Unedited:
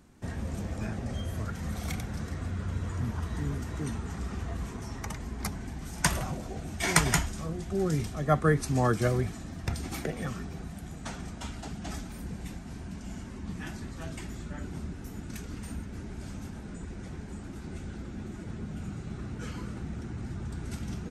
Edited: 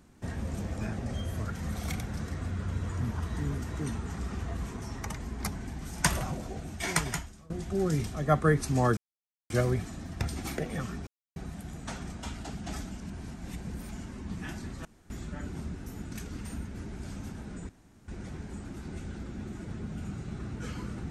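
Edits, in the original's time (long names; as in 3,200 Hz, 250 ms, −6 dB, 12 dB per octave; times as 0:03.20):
0:06.46–0:07.50: fade out, to −22.5 dB
0:08.97: splice in silence 0.53 s
0:10.54: splice in silence 0.29 s
0:12.09–0:13.10: reverse
0:14.03–0:14.28: fill with room tone
0:16.87: splice in room tone 0.39 s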